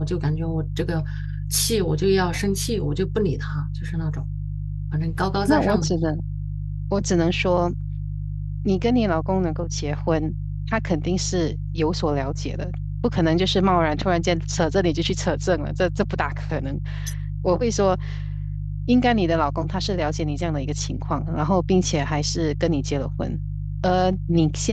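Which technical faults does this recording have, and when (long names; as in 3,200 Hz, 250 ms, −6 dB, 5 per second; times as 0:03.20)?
mains hum 50 Hz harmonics 3 −28 dBFS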